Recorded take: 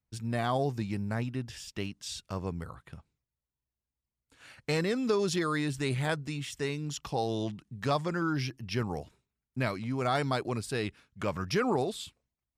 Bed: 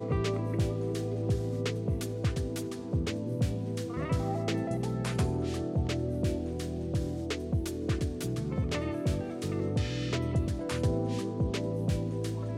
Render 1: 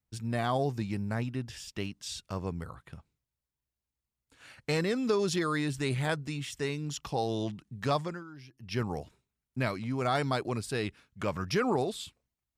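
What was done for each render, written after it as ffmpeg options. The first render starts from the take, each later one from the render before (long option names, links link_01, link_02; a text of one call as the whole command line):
ffmpeg -i in.wav -filter_complex "[0:a]asplit=3[link_01][link_02][link_03];[link_01]atrim=end=8.24,asetpts=PTS-STARTPTS,afade=type=out:start_time=7.98:duration=0.26:silence=0.133352[link_04];[link_02]atrim=start=8.24:end=8.53,asetpts=PTS-STARTPTS,volume=-17.5dB[link_05];[link_03]atrim=start=8.53,asetpts=PTS-STARTPTS,afade=type=in:duration=0.26:silence=0.133352[link_06];[link_04][link_05][link_06]concat=n=3:v=0:a=1" out.wav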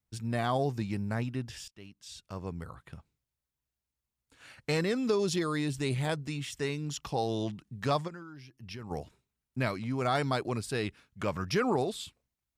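ffmpeg -i in.wav -filter_complex "[0:a]asettb=1/sr,asplit=3[link_01][link_02][link_03];[link_01]atrim=end=5.104[link_04];[link_02]atrim=start=5.1:end=6.25,asetpts=PTS-STARTPTS,afade=type=in:duration=0.004:curve=qsin,afade=type=out:start_time=1.146:duration=0.004:curve=qsin,equalizer=frequency=1500:width=1.5:gain=-5[link_05];[link_03]atrim=start=6.246[link_06];[link_04][link_05]acrossfade=duration=0.004:curve1=hsin:curve2=qsin[link_07];[link_07][link_06]acrossfade=duration=0.004:curve1=qsin:curve2=hsin,asplit=3[link_08][link_09][link_10];[link_08]afade=type=out:start_time=8.07:duration=0.02[link_11];[link_09]acompressor=threshold=-39dB:ratio=6:attack=3.2:release=140:knee=1:detection=peak,afade=type=in:start_time=8.07:duration=0.02,afade=type=out:start_time=8.9:duration=0.02[link_12];[link_10]afade=type=in:start_time=8.9:duration=0.02[link_13];[link_11][link_12][link_13]amix=inputs=3:normalize=0,asplit=2[link_14][link_15];[link_14]atrim=end=1.68,asetpts=PTS-STARTPTS,afade=type=out:start_time=1.676:duration=0.004:curve=hsin:silence=0.0841395[link_16];[link_15]atrim=start=1.68,asetpts=PTS-STARTPTS,afade=type=in:duration=1.19:silence=0.0841395[link_17];[link_16][link_17]concat=n=2:v=0:a=1" out.wav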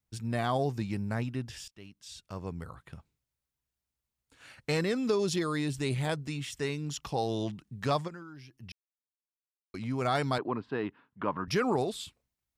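ffmpeg -i in.wav -filter_complex "[0:a]asettb=1/sr,asplit=3[link_01][link_02][link_03];[link_01]atrim=end=10.384[link_04];[link_02]atrim=start=10.38:end=11.48,asetpts=PTS-STARTPTS,afade=type=in:duration=0.004:curve=qsin,afade=type=out:start_time=1.096:duration=0.004:curve=qsin,highpass=170,equalizer=frequency=280:width_type=q:width=4:gain=5,equalizer=frequency=570:width_type=q:width=4:gain=-3,equalizer=frequency=980:width_type=q:width=4:gain=9,equalizer=frequency=2300:width_type=q:width=4:gain=-9,lowpass=frequency=2700:width=0.5412,lowpass=frequency=2700:width=1.3066[link_05];[link_03]atrim=start=11.476[link_06];[link_04][link_05]acrossfade=duration=0.004:curve1=hsin:curve2=qsin[link_07];[link_07][link_06]acrossfade=duration=0.004:curve1=qsin:curve2=hsin,asplit=3[link_08][link_09][link_10];[link_08]atrim=end=8.72,asetpts=PTS-STARTPTS,afade=type=out:start_time=8.716:duration=0.004:curve=hsin[link_11];[link_09]atrim=start=8.72:end=9.74,asetpts=PTS-STARTPTS,volume=0[link_12];[link_10]atrim=start=9.74,asetpts=PTS-STARTPTS,afade=type=in:duration=0.004:curve=hsin[link_13];[link_11][link_12][link_13]concat=n=3:v=0:a=1" out.wav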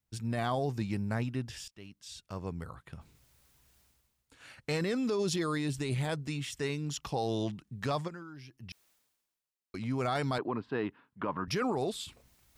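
ffmpeg -i in.wav -af "alimiter=limit=-23dB:level=0:latency=1:release=12,areverse,acompressor=mode=upward:threshold=-47dB:ratio=2.5,areverse" out.wav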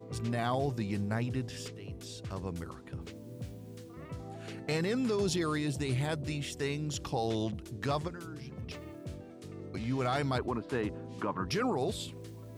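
ffmpeg -i in.wav -i bed.wav -filter_complex "[1:a]volume=-13dB[link_01];[0:a][link_01]amix=inputs=2:normalize=0" out.wav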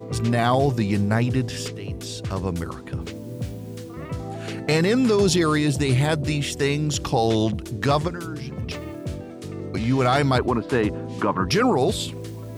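ffmpeg -i in.wav -af "volume=12dB" out.wav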